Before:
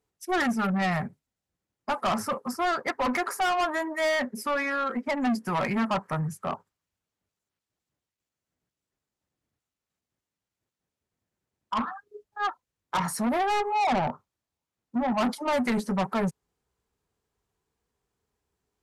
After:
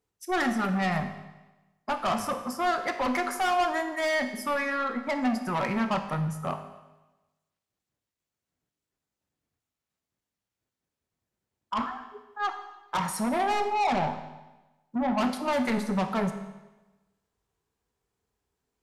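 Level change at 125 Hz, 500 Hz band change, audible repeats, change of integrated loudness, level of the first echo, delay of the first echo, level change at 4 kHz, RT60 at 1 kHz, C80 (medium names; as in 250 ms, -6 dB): -0.5 dB, -0.5 dB, no echo, -0.5 dB, no echo, no echo, -1.0 dB, 1.1 s, 11.0 dB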